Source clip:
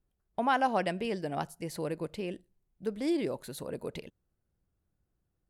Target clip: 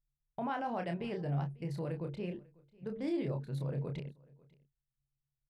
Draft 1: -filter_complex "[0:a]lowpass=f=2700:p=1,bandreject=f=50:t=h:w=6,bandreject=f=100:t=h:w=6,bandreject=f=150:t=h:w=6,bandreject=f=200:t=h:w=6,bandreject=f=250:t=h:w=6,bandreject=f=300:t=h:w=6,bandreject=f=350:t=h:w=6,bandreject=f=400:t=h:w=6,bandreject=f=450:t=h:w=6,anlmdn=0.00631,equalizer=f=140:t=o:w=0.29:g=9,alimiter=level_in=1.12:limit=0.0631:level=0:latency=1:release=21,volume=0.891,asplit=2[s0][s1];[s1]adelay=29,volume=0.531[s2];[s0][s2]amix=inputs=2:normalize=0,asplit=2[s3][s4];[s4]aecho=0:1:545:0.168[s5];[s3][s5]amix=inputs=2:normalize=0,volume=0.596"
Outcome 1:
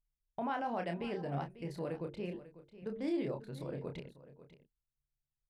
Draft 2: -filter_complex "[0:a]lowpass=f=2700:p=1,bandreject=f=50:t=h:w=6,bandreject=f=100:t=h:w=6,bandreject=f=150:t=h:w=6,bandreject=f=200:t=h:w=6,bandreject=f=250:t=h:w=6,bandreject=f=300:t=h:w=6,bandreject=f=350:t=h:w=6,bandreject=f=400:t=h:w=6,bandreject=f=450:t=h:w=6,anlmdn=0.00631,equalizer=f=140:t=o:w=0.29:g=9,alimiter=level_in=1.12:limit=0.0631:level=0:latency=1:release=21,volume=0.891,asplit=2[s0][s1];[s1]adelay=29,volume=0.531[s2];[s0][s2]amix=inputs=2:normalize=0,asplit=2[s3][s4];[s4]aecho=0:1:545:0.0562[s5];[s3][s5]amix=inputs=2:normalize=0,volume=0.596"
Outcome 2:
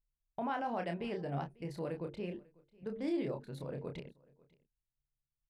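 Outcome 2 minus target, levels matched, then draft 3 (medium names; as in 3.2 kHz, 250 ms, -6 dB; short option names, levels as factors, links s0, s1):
125 Hz band -5.5 dB
-filter_complex "[0:a]lowpass=f=2700:p=1,bandreject=f=50:t=h:w=6,bandreject=f=100:t=h:w=6,bandreject=f=150:t=h:w=6,bandreject=f=200:t=h:w=6,bandreject=f=250:t=h:w=6,bandreject=f=300:t=h:w=6,bandreject=f=350:t=h:w=6,bandreject=f=400:t=h:w=6,bandreject=f=450:t=h:w=6,anlmdn=0.00631,equalizer=f=140:t=o:w=0.29:g=20.5,alimiter=level_in=1.12:limit=0.0631:level=0:latency=1:release=21,volume=0.891,asplit=2[s0][s1];[s1]adelay=29,volume=0.531[s2];[s0][s2]amix=inputs=2:normalize=0,asplit=2[s3][s4];[s4]aecho=0:1:545:0.0562[s5];[s3][s5]amix=inputs=2:normalize=0,volume=0.596"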